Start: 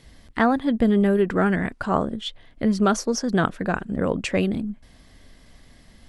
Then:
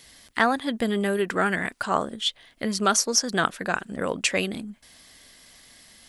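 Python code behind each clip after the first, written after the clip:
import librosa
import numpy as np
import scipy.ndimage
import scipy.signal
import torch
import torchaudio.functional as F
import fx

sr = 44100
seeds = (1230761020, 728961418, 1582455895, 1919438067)

y = fx.tilt_eq(x, sr, slope=3.5)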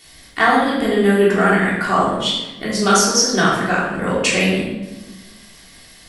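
y = fx.room_shoebox(x, sr, seeds[0], volume_m3=580.0, walls='mixed', distance_m=3.4)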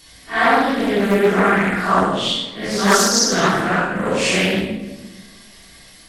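y = fx.phase_scramble(x, sr, seeds[1], window_ms=200)
y = fx.doppler_dist(y, sr, depth_ms=0.43)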